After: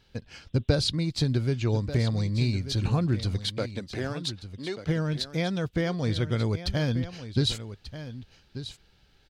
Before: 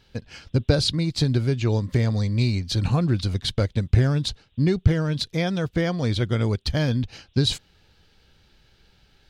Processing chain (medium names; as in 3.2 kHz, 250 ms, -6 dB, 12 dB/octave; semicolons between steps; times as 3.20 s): 3.40–4.87 s: high-pass 180 Hz -> 550 Hz 12 dB/octave; delay 1188 ms -12.5 dB; trim -4 dB